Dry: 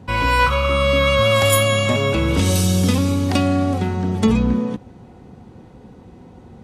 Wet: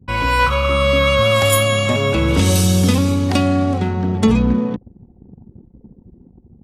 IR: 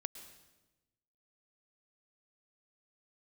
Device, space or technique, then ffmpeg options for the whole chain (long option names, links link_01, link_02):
voice memo with heavy noise removal: -af "anlmdn=6.31,dynaudnorm=framelen=140:gausssize=7:maxgain=4.5dB"